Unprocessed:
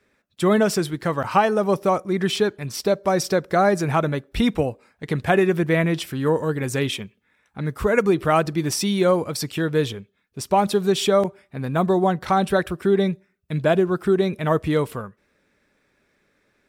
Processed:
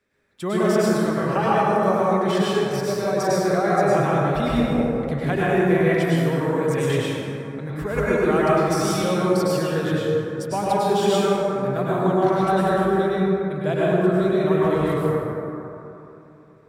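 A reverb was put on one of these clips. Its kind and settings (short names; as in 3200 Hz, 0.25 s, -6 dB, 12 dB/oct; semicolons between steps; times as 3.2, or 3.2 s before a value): plate-style reverb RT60 3.1 s, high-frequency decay 0.35×, pre-delay 90 ms, DRR -8 dB; gain -8.5 dB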